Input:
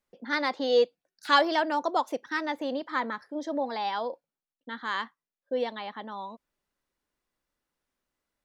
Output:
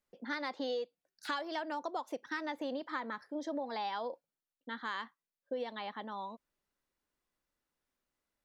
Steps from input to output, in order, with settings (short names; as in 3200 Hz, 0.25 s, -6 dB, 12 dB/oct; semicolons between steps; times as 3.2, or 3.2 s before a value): compressor 16:1, threshold -30 dBFS, peak gain reduction 15 dB; gain -3.5 dB